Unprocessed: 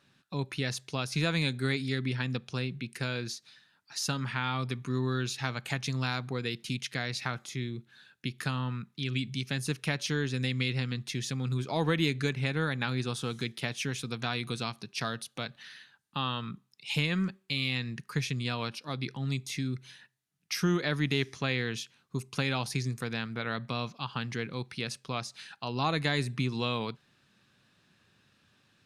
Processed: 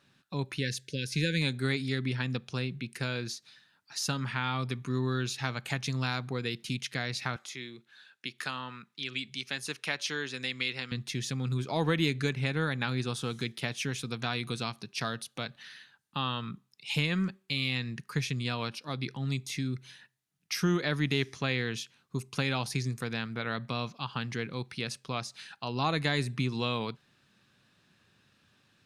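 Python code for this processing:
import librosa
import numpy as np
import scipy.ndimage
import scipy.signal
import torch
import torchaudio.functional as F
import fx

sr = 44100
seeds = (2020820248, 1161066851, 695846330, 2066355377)

y = fx.spec_erase(x, sr, start_s=0.57, length_s=0.84, low_hz=580.0, high_hz=1500.0)
y = fx.weighting(y, sr, curve='A', at=(7.36, 10.92))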